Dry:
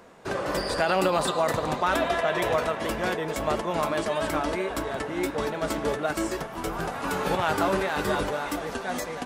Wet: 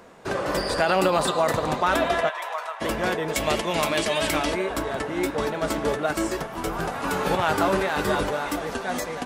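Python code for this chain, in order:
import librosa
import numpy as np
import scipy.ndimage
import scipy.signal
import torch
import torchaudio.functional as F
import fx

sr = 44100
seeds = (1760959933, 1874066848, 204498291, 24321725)

y = fx.ladder_highpass(x, sr, hz=730.0, resonance_pct=40, at=(2.28, 2.8), fade=0.02)
y = fx.high_shelf_res(y, sr, hz=1800.0, db=6.5, q=1.5, at=(3.35, 4.53))
y = y * librosa.db_to_amplitude(2.5)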